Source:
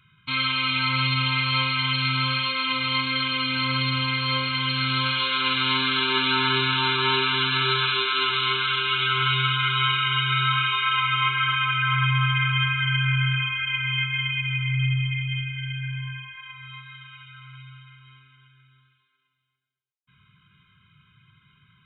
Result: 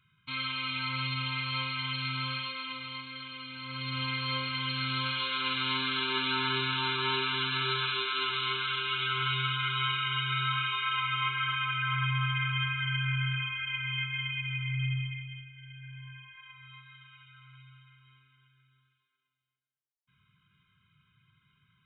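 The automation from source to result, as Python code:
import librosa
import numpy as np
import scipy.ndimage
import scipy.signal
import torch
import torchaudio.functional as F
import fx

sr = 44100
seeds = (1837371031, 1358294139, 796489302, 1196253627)

y = fx.gain(x, sr, db=fx.line((2.35, -10.0), (3.07, -17.5), (3.61, -17.5), (4.02, -8.0), (14.98, -8.0), (15.51, -19.0), (16.38, -10.0)))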